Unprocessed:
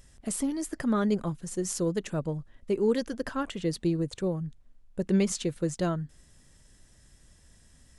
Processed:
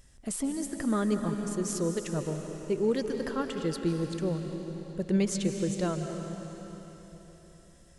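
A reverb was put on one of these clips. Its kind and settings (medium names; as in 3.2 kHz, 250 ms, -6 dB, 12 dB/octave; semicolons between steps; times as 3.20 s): algorithmic reverb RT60 4 s, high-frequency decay 0.95×, pre-delay 110 ms, DRR 5 dB; trim -2 dB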